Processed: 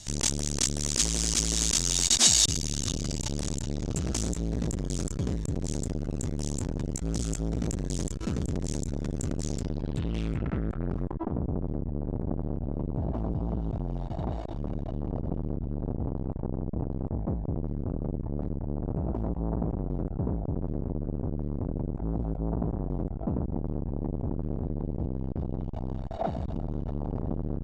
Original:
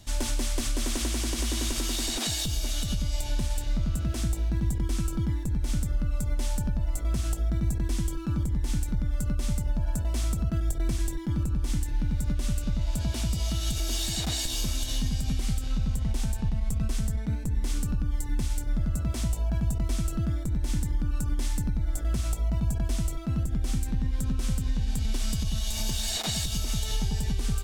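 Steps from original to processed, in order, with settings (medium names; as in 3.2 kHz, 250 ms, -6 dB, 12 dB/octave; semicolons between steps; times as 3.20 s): treble shelf 4.5 kHz +10 dB; in parallel at -6.5 dB: Schmitt trigger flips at -34.5 dBFS; on the sum: low-pass sweep 6.9 kHz -> 670 Hz, 9.41–11.39 s; transformer saturation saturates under 900 Hz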